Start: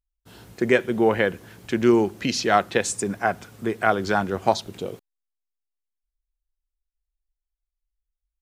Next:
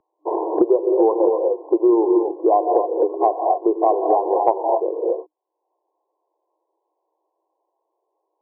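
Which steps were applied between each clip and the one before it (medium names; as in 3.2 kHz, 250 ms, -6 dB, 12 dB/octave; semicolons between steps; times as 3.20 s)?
gated-style reverb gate 280 ms rising, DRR 3.5 dB; FFT band-pass 310–1100 Hz; three bands compressed up and down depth 100%; trim +4 dB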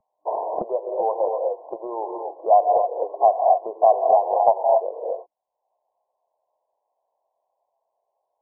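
FFT filter 220 Hz 0 dB, 330 Hz -26 dB, 640 Hz +3 dB, 1.6 kHz -15 dB; trim +1.5 dB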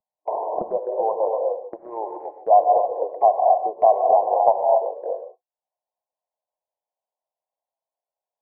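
gate -29 dBFS, range -17 dB; gated-style reverb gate 170 ms rising, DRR 9 dB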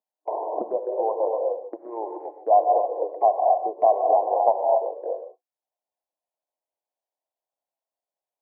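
resonant low shelf 190 Hz -14 dB, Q 3; trim -4 dB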